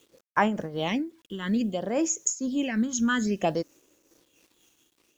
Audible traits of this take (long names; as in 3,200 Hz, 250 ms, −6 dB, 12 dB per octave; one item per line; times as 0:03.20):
phaser sweep stages 8, 0.58 Hz, lowest notch 630–4,200 Hz
a quantiser's noise floor 10 bits, dither none
amplitude modulation by smooth noise